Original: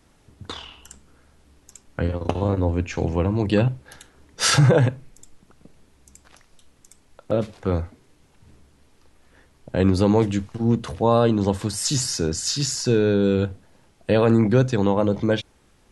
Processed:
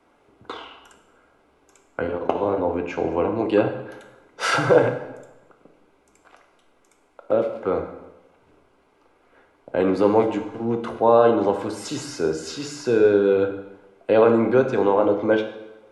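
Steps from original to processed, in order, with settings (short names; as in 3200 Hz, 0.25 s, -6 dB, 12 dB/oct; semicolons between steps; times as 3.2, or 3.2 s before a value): Butterworth band-stop 1800 Hz, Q 7.3; three-band isolator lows -20 dB, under 290 Hz, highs -17 dB, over 2400 Hz; plate-style reverb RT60 1 s, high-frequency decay 0.85×, DRR 5 dB; gain +3.5 dB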